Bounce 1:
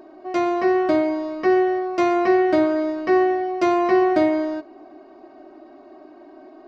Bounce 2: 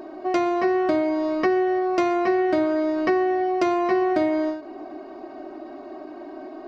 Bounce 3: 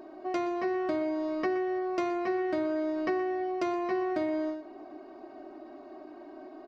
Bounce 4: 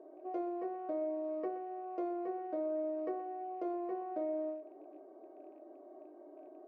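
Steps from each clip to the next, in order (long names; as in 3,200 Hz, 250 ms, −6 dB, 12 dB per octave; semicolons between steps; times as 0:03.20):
downward compressor 4 to 1, threshold −27 dBFS, peak gain reduction 12 dB; every ending faded ahead of time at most 110 dB per second; level +7 dB
slap from a distant wall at 21 metres, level −15 dB; level −9 dB
loose part that buzzes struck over −51 dBFS, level −43 dBFS; resonant band-pass 490 Hz, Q 3.8; rectangular room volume 120 cubic metres, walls furnished, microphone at 0.6 metres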